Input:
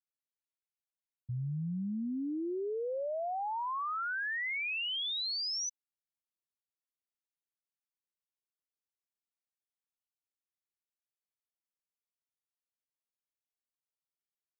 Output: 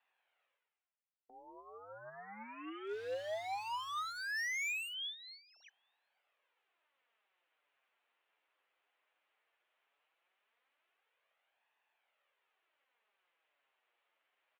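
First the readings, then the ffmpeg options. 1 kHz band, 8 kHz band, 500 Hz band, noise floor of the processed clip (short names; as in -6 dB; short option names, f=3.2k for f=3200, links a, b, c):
-6.0 dB, n/a, -6.5 dB, under -85 dBFS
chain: -filter_complex "[0:a]areverse,acompressor=mode=upward:threshold=-45dB:ratio=2.5,areverse,asplit=2[a][b];[b]adelay=758,volume=-28dB,highshelf=f=4k:g=-17.1[c];[a][c]amix=inputs=2:normalize=0,aeval=exprs='0.0266*(cos(1*acos(clip(val(0)/0.0266,-1,1)))-cos(1*PI/2))+0.00299*(cos(5*acos(clip(val(0)/0.0266,-1,1)))-cos(5*PI/2))+0.000944*(cos(6*acos(clip(val(0)/0.0266,-1,1)))-cos(6*PI/2))+0.00376*(cos(7*acos(clip(val(0)/0.0266,-1,1)))-cos(7*PI/2))+0.000473*(cos(8*acos(clip(val(0)/0.0266,-1,1)))-cos(8*PI/2))':c=same,highpass=f=580:t=q:w=0.5412,highpass=f=580:t=q:w=1.307,lowpass=f=3.1k:t=q:w=0.5176,lowpass=f=3.1k:t=q:w=0.7071,lowpass=f=3.1k:t=q:w=1.932,afreqshift=-100,aeval=exprs='0.015*(abs(mod(val(0)/0.015+3,4)-2)-1)':c=same,flanger=delay=1.1:depth=8.7:regen=27:speed=0.17:shape=sinusoidal,volume=3dB"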